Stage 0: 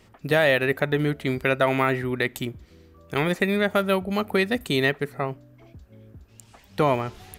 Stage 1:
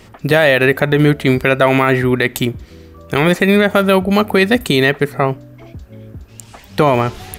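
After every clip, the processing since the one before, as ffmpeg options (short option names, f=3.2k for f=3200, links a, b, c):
-af "alimiter=level_in=14dB:limit=-1dB:release=50:level=0:latency=1,volume=-1dB"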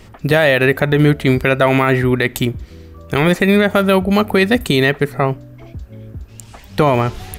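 -af "lowshelf=f=82:g=9,volume=-1.5dB"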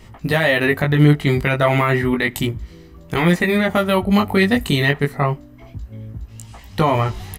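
-af "aecho=1:1:1:0.3,flanger=delay=17.5:depth=3.7:speed=0.31"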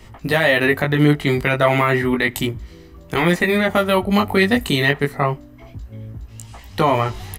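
-filter_complex "[0:a]equalizer=f=170:w=1.8:g=-4,acrossover=split=130[a][b];[a]alimiter=level_in=5.5dB:limit=-24dB:level=0:latency=1,volume=-5.5dB[c];[c][b]amix=inputs=2:normalize=0,volume=1dB"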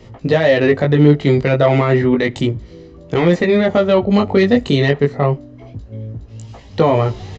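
-af "acontrast=34,equalizer=f=125:t=o:w=1:g=10,equalizer=f=250:t=o:w=1:g=5,equalizer=f=500:t=o:w=1:g=12,equalizer=f=4k:t=o:w=1:g=4,aresample=16000,aresample=44100,volume=-9.5dB"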